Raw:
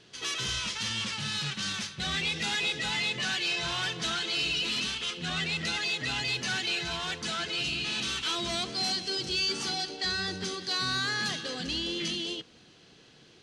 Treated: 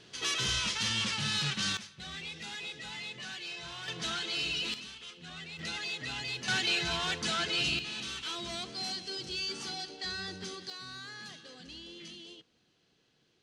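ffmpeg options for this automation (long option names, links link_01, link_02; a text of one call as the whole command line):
ffmpeg -i in.wav -af "asetnsamples=nb_out_samples=441:pad=0,asendcmd='1.77 volume volume -11.5dB;3.88 volume volume -4dB;4.74 volume volume -13.5dB;5.59 volume volume -6.5dB;6.48 volume volume 1dB;7.79 volume volume -7dB;10.7 volume volume -15dB',volume=1dB" out.wav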